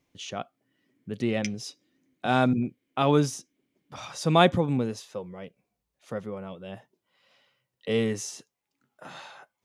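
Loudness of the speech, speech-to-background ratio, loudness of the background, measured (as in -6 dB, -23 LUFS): -27.5 LUFS, 13.0 dB, -40.5 LUFS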